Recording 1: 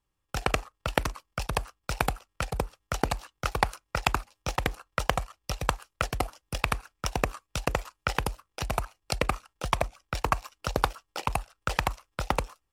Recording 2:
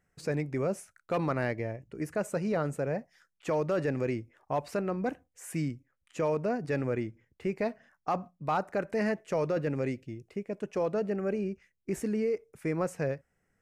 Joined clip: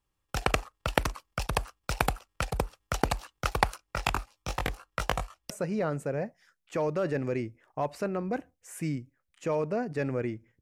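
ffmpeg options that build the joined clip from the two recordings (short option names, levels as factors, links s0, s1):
-filter_complex "[0:a]asettb=1/sr,asplit=3[s0][s1][s2];[s0]atrim=end=3.774[s3];[s1]atrim=start=3.77:end=5.5,asetpts=PTS-STARTPTS,afade=t=in:d=0.004:c=qsin,afade=t=out:st=1.726:d=0.004:c=qsin,flanger=delay=18.5:depth=2.5:speed=1.6[s4];[s2]atrim=start=5.496[s5];[s3][s4]acrossfade=d=0.004:c1=hsin:c2=qsin[s6];[s6][s5]acrossfade=d=0.004:c1=qsin:c2=hsin,apad=whole_dur=10.61,atrim=end=10.61,atrim=end=5.502[s7];[1:a]atrim=start=2.228:end=7.34[s8];[s7][s8]acrossfade=d=0.004:c1=hsin:c2=hsin"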